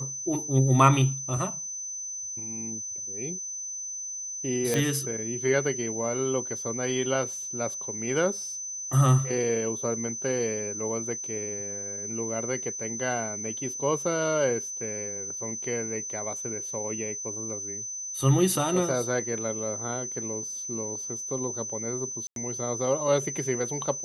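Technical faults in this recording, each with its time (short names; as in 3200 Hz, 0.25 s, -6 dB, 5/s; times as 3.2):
tone 6100 Hz -33 dBFS
4.74 pop -11 dBFS
22.27–22.36 gap 92 ms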